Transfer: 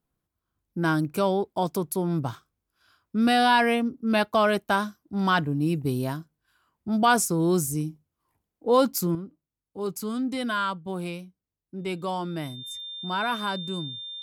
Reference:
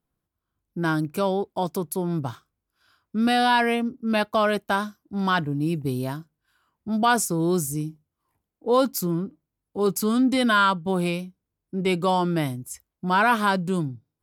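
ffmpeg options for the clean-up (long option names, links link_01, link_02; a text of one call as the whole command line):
ffmpeg -i in.wav -af "bandreject=frequency=3600:width=30,asetnsamples=nb_out_samples=441:pad=0,asendcmd='9.15 volume volume 8dB',volume=0dB" out.wav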